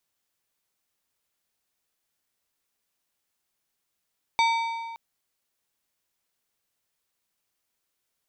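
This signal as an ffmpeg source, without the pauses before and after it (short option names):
-f lavfi -i "aevalsrc='0.119*pow(10,-3*t/1.85)*sin(2*PI*917*t)+0.0668*pow(10,-3*t/1.405)*sin(2*PI*2292.5*t)+0.0376*pow(10,-3*t/1.221)*sin(2*PI*3668*t)+0.0211*pow(10,-3*t/1.142)*sin(2*PI*4585*t)+0.0119*pow(10,-3*t/1.055)*sin(2*PI*5960.5*t)+0.00668*pow(10,-3*t/0.974)*sin(2*PI*7794.5*t)':d=0.57:s=44100"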